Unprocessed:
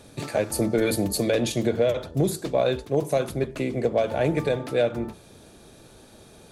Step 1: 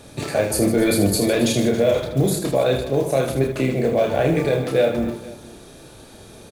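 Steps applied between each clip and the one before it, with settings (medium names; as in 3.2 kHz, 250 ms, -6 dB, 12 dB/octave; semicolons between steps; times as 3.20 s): peak limiter -15 dBFS, peak gain reduction 3.5 dB; modulation noise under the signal 33 dB; reverse bouncing-ball echo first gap 30 ms, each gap 1.6×, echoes 5; trim +4.5 dB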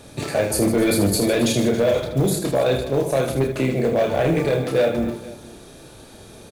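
hard clipper -12.5 dBFS, distortion -19 dB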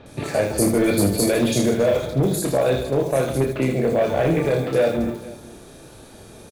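bands offset in time lows, highs 60 ms, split 3.7 kHz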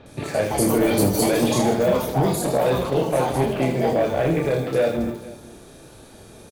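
ever faster or slower copies 252 ms, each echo +5 st, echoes 2, each echo -6 dB; trim -1.5 dB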